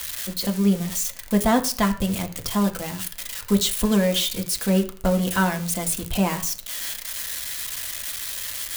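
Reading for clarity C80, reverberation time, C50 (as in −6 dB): 17.0 dB, 0.45 s, 13.0 dB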